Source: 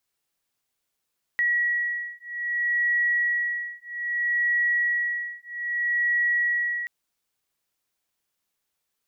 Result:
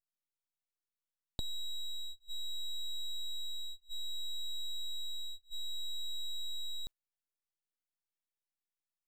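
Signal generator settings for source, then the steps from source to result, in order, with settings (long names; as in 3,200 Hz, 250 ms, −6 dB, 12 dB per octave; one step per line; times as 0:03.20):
two tones that beat 1,920 Hz, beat 0.62 Hz, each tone −25.5 dBFS 5.48 s
noise gate −38 dBFS, range −17 dB
downward compressor 10 to 1, threshold −35 dBFS
full-wave rectification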